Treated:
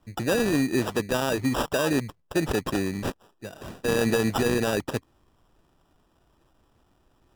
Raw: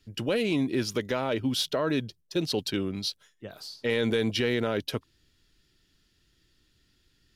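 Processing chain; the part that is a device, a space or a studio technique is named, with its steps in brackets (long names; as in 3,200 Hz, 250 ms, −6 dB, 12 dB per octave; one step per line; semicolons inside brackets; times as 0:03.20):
crushed at another speed (tape speed factor 0.5×; decimation without filtering 41×; tape speed factor 2×)
level +3 dB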